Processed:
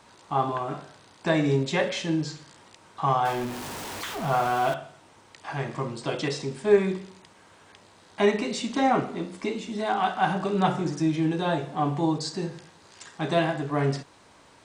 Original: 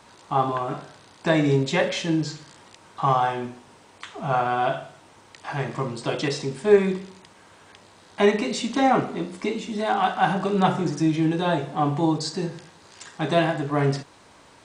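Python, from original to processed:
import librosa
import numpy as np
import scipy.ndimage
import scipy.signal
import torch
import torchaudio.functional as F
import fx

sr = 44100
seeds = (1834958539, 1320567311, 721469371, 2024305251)

y = fx.zero_step(x, sr, step_db=-28.0, at=(3.25, 4.74))
y = F.gain(torch.from_numpy(y), -3.0).numpy()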